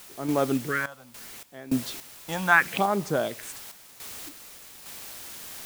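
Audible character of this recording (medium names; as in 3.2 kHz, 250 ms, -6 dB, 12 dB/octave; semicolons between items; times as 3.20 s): phasing stages 4, 0.74 Hz, lowest notch 360–2900 Hz; a quantiser's noise floor 8-bit, dither triangular; random-step tremolo, depth 90%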